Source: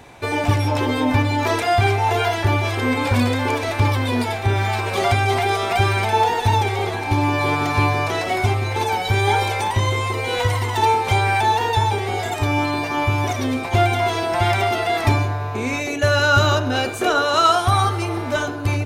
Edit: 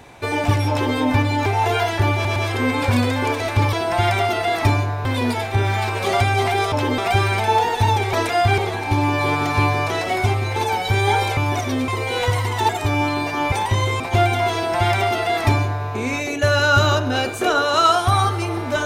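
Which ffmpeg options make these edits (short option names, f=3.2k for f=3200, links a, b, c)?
-filter_complex "[0:a]asplit=15[a][b][c][d][e][f][g][h][i][j][k][l][m][n][o];[a]atrim=end=1.462[p];[b]atrim=start=1.908:end=2.702[q];[c]atrim=start=2.588:end=2.702[r];[d]atrim=start=2.588:end=3.962[s];[e]atrim=start=14.148:end=15.472[t];[f]atrim=start=3.958:end=5.632[u];[g]atrim=start=0.698:end=0.962[v];[h]atrim=start=5.628:end=6.782[w];[i]atrim=start=1.458:end=1.912[x];[j]atrim=start=6.778:end=9.572[y];[k]atrim=start=13.088:end=13.602[z];[l]atrim=start=10.048:end=10.862[aa];[m]atrim=start=12.258:end=13.092[ab];[n]atrim=start=9.568:end=10.052[ac];[o]atrim=start=13.598[ad];[p][q]acrossfade=d=0.004:c1=hsin:c2=hsin[ae];[ae][r]acrossfade=d=0.004:c1=hsin:c2=hsin[af];[af][s]acrossfade=d=0.004:c1=hsin:c2=hsin[ag];[ag][t]acrossfade=d=0.004:c1=hsin:c2=hsin[ah];[ah][u]acrossfade=d=0.004:c1=hsin:c2=hsin[ai];[ai][v]acrossfade=d=0.004:c1=hsin:c2=hsin[aj];[aj][w]acrossfade=d=0.004:c1=hsin:c2=hsin[ak];[ak][x]acrossfade=d=0.004:c1=hsin:c2=hsin[al];[al][y]acrossfade=d=0.004:c1=hsin:c2=hsin[am];[am][z]acrossfade=d=0.004:c1=hsin:c2=hsin[an];[an][aa]acrossfade=d=0.004:c1=hsin:c2=hsin[ao];[ao][ab]acrossfade=d=0.004:c1=hsin:c2=hsin[ap];[ap][ac]acrossfade=d=0.004:c1=hsin:c2=hsin[aq];[aq][ad]acrossfade=d=0.004:c1=hsin:c2=hsin"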